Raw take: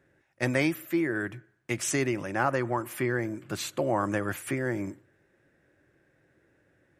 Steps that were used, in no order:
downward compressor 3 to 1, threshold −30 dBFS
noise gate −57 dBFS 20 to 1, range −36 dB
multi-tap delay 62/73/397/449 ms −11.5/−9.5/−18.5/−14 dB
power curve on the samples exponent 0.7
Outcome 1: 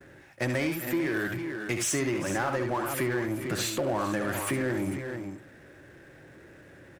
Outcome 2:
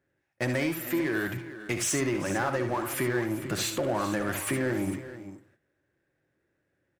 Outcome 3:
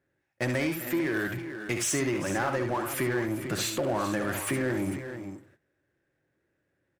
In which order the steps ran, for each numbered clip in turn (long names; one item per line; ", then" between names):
multi-tap delay, then downward compressor, then power curve on the samples, then noise gate
noise gate, then downward compressor, then power curve on the samples, then multi-tap delay
noise gate, then downward compressor, then multi-tap delay, then power curve on the samples